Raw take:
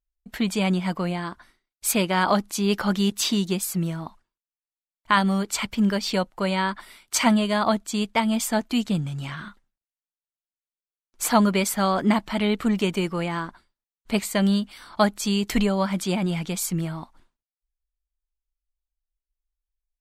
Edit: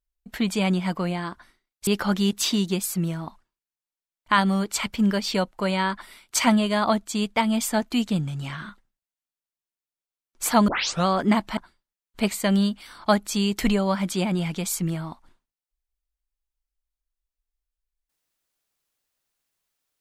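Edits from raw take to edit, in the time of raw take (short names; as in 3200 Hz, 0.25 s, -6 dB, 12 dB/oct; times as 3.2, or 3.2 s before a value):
1.87–2.66 cut
11.47 tape start 0.38 s
12.36–13.48 cut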